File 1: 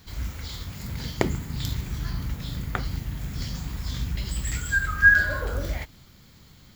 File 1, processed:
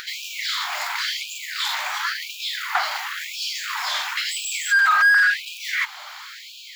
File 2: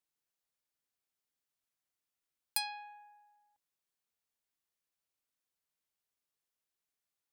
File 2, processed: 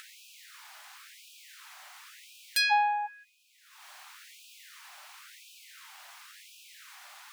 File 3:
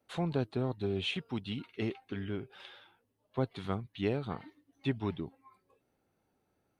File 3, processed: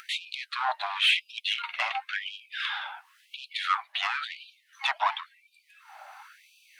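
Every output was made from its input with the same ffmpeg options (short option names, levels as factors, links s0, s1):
-filter_complex "[0:a]asplit=2[s0][s1];[s1]highpass=f=720:p=1,volume=56.2,asoftclip=type=tanh:threshold=0.708[s2];[s0][s2]amix=inputs=2:normalize=0,lowpass=f=1100:p=1,volume=0.501,bandreject=f=660:w=12,asplit=2[s3][s4];[s4]asoftclip=type=tanh:threshold=0.168,volume=0.631[s5];[s3][s5]amix=inputs=2:normalize=0,acompressor=mode=upward:threshold=0.0501:ratio=2.5,afftfilt=real='re*gte(b*sr/1024,580*pow(2400/580,0.5+0.5*sin(2*PI*0.95*pts/sr)))':imag='im*gte(b*sr/1024,580*pow(2400/580,0.5+0.5*sin(2*PI*0.95*pts/sr)))':win_size=1024:overlap=0.75,volume=0.631"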